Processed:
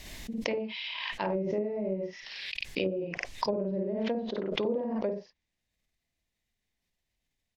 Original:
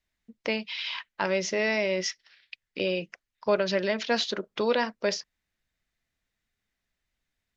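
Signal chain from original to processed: peaking EQ 1.4 kHz -11 dB 0.59 oct; loudspeakers at several distances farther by 18 m -1 dB, 32 m -8 dB; low-pass that closes with the level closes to 400 Hz, closed at -21 dBFS; swell ahead of each attack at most 29 dB/s; trim -3.5 dB

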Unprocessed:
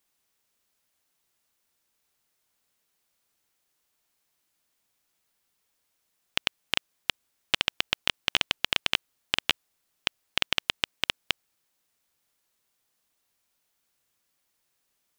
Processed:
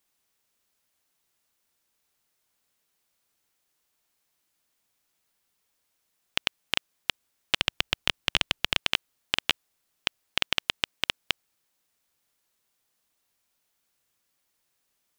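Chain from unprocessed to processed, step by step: 7.59–8.77 s: bass shelf 140 Hz +9.5 dB

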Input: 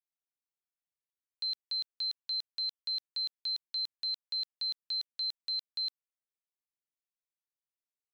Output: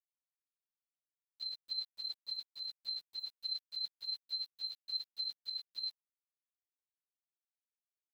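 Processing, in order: phase randomisation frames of 50 ms; 1.65–3.20 s: band noise 86–1100 Hz -74 dBFS; small samples zeroed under -54.5 dBFS; trim -6 dB

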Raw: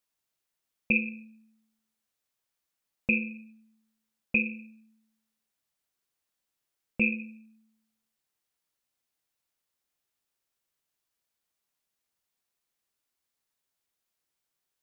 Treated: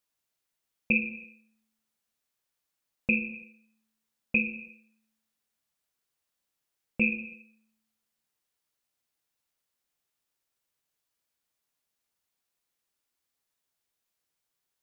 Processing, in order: gated-style reverb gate 360 ms falling, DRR 10 dB

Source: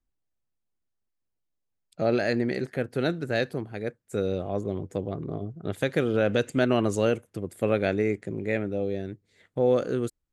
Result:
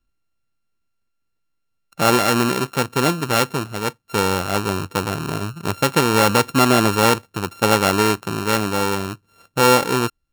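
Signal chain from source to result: sorted samples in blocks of 32 samples; trim +8 dB

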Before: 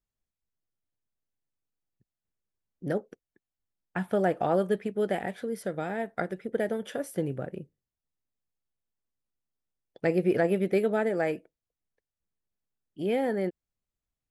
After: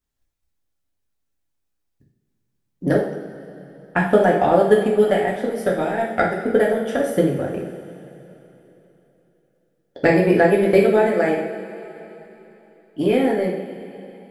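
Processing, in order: transient shaper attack +8 dB, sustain -2 dB; two-slope reverb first 0.56 s, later 3.5 s, from -16 dB, DRR -3 dB; trim +3.5 dB

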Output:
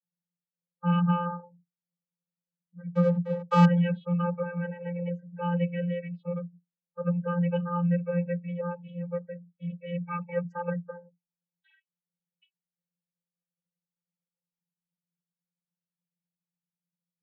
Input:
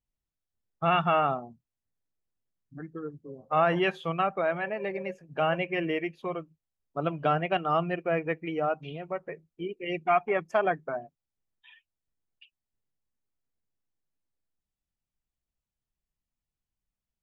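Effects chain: loudest bins only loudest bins 32; 2.91–3.65 s: waveshaping leveller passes 5; vocoder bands 32, square 174 Hz

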